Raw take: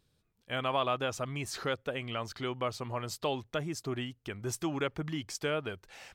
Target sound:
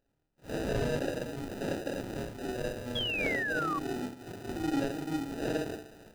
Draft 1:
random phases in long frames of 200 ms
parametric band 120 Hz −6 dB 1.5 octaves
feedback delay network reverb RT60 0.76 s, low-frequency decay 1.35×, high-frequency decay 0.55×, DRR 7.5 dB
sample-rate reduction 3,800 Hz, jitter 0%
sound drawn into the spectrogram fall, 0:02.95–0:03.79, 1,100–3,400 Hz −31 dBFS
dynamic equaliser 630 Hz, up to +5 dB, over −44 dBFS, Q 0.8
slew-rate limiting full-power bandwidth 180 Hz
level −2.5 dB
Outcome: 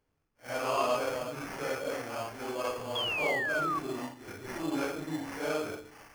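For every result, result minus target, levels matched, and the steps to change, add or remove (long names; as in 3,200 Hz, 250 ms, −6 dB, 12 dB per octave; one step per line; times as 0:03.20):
sample-rate reduction: distortion −14 dB; 250 Hz band −4.5 dB
change: sample-rate reduction 1,100 Hz, jitter 0%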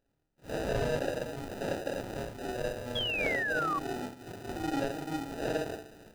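250 Hz band −3.0 dB
change: dynamic equaliser 300 Hz, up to +5 dB, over −44 dBFS, Q 0.8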